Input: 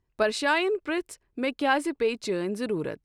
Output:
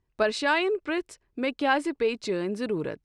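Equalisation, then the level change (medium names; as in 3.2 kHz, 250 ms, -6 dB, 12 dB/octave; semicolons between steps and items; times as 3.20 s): low-pass 7.4 kHz 12 dB/octave; 0.0 dB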